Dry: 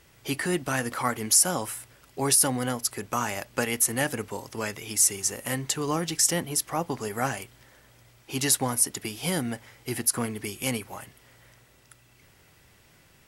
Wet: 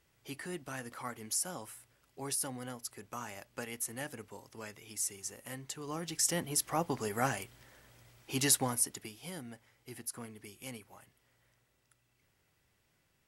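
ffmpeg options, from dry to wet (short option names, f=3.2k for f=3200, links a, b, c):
-af "volume=-4dB,afade=t=in:st=5.83:d=0.88:silence=0.298538,afade=t=out:st=8.46:d=0.75:silence=0.237137"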